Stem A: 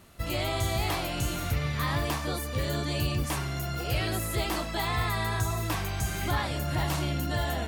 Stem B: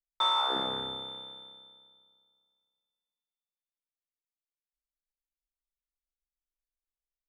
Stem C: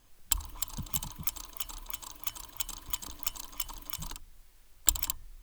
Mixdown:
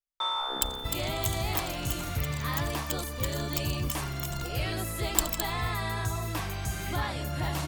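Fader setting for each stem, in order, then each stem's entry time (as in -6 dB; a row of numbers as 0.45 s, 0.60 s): -2.5 dB, -3.5 dB, -1.0 dB; 0.65 s, 0.00 s, 0.30 s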